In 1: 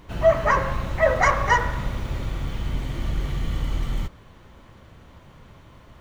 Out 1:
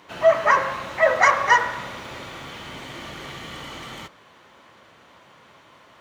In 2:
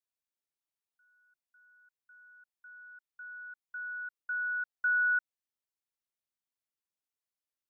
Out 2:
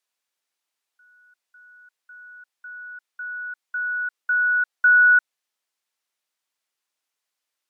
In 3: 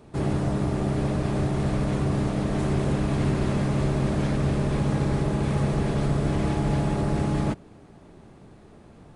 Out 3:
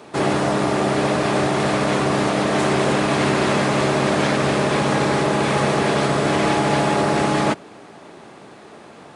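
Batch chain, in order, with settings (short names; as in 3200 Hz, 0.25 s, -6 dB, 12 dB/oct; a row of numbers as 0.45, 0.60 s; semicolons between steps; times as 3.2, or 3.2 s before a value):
weighting filter A; match loudness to -19 LUFS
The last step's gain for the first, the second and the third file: +3.0, +12.5, +14.0 dB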